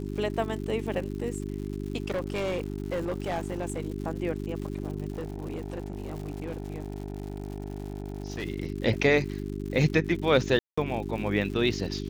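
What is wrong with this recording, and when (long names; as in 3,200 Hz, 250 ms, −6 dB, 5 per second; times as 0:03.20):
surface crackle 170 per second −37 dBFS
mains hum 50 Hz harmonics 8 −34 dBFS
0:02.04–0:03.86: clipping −25.5 dBFS
0:05.12–0:08.44: clipping −29.5 dBFS
0:10.59–0:10.78: drop-out 185 ms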